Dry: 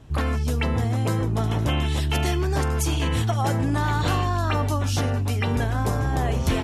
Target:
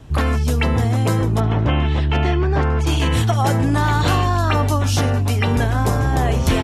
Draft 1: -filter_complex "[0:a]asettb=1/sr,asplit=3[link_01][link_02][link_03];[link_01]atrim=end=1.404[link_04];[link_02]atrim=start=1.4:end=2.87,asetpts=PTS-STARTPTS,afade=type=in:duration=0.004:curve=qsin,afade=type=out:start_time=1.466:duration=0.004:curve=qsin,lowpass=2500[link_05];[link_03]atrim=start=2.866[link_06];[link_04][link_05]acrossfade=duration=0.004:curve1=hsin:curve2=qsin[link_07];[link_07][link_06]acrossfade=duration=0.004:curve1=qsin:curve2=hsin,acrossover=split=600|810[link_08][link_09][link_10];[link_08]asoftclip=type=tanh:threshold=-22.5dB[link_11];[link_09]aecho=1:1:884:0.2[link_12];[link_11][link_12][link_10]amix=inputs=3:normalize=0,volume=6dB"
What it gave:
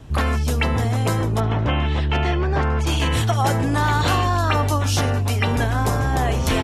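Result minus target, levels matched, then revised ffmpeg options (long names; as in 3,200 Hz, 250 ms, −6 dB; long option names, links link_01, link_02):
soft clipping: distortion +18 dB
-filter_complex "[0:a]asettb=1/sr,asplit=3[link_01][link_02][link_03];[link_01]atrim=end=1.404[link_04];[link_02]atrim=start=1.4:end=2.87,asetpts=PTS-STARTPTS,afade=type=in:duration=0.004:curve=qsin,afade=type=out:start_time=1.466:duration=0.004:curve=qsin,lowpass=2500[link_05];[link_03]atrim=start=2.866[link_06];[link_04][link_05]acrossfade=duration=0.004:curve1=hsin:curve2=qsin[link_07];[link_07][link_06]acrossfade=duration=0.004:curve1=qsin:curve2=hsin,acrossover=split=600|810[link_08][link_09][link_10];[link_08]asoftclip=type=tanh:threshold=-10.5dB[link_11];[link_09]aecho=1:1:884:0.2[link_12];[link_11][link_12][link_10]amix=inputs=3:normalize=0,volume=6dB"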